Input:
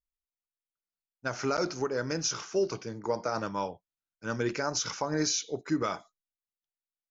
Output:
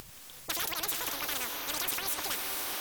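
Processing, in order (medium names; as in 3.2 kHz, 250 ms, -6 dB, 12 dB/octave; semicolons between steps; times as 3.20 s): wide varispeed 2.53×; upward compressor, threshold -38 dBFS; on a send: echo that smears into a reverb 476 ms, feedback 52%, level -10 dB; on the sum: spectrum-flattening compressor 4:1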